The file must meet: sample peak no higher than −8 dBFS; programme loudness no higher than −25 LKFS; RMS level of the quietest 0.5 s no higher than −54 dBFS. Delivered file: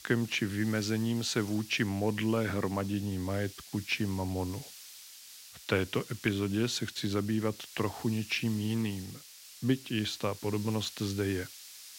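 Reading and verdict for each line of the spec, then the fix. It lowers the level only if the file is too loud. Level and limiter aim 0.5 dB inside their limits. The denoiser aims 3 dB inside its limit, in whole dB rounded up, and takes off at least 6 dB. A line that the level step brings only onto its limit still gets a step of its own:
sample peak −13.0 dBFS: in spec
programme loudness −32.5 LKFS: in spec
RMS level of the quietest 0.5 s −51 dBFS: out of spec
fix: broadband denoise 6 dB, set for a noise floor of −51 dBFS

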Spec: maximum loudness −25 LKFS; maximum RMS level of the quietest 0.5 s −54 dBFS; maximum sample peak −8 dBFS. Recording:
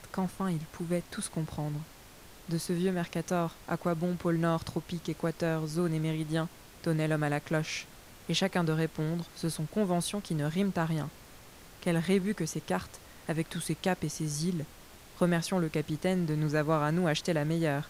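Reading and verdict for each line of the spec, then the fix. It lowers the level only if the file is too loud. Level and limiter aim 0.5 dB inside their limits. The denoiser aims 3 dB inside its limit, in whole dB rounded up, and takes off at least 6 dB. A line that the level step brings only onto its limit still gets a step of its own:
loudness −32.0 LKFS: in spec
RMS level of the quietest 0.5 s −52 dBFS: out of spec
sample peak −15.0 dBFS: in spec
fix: broadband denoise 6 dB, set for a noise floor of −52 dBFS

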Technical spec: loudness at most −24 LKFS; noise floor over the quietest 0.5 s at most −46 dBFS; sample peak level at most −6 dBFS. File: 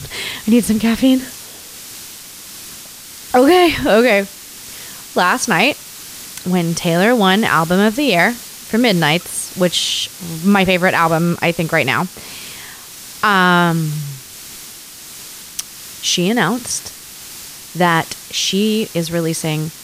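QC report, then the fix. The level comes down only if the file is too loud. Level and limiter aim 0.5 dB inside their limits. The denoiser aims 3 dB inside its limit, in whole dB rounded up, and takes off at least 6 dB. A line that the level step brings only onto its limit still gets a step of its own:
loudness −15.0 LKFS: out of spec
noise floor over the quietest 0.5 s −35 dBFS: out of spec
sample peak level −2.0 dBFS: out of spec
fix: broadband denoise 6 dB, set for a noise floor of −35 dBFS
level −9.5 dB

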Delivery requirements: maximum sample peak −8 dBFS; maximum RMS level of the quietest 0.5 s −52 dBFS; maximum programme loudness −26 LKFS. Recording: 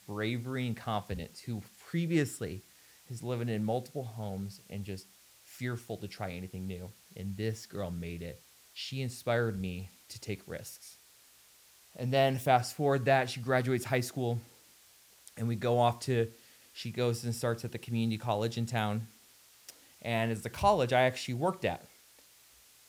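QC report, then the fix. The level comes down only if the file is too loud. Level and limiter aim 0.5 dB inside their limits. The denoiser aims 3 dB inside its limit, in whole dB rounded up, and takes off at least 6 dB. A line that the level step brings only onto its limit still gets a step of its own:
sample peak −12.0 dBFS: in spec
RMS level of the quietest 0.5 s −61 dBFS: in spec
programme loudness −33.5 LKFS: in spec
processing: no processing needed

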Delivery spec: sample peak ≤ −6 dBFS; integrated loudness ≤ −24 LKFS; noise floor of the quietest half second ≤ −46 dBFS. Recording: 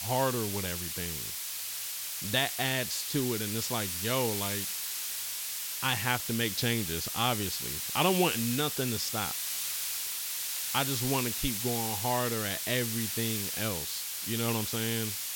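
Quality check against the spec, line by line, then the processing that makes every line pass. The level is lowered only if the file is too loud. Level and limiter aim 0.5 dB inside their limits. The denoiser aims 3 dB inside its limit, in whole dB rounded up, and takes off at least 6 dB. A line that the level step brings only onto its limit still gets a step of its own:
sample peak −12.0 dBFS: in spec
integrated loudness −30.0 LKFS: in spec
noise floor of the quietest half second −37 dBFS: out of spec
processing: broadband denoise 12 dB, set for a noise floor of −37 dBFS

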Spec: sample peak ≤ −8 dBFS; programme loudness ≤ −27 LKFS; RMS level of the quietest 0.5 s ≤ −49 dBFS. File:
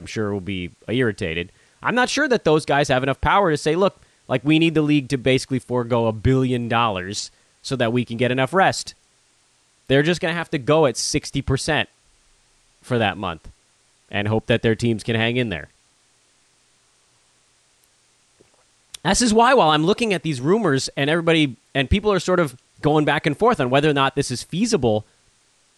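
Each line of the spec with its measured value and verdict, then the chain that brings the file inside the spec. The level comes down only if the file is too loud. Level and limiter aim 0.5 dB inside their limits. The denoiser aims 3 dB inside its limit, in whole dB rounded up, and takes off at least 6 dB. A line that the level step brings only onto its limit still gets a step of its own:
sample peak −5.5 dBFS: out of spec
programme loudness −20.0 LKFS: out of spec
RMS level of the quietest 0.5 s −60 dBFS: in spec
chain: level −7.5 dB

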